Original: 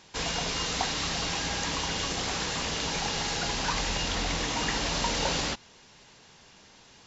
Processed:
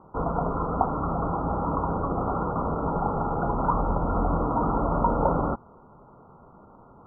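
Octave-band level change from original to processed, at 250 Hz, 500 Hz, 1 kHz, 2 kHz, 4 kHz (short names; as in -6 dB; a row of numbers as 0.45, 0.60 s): +8.5 dB, +8.0 dB, +8.0 dB, -13.5 dB, under -40 dB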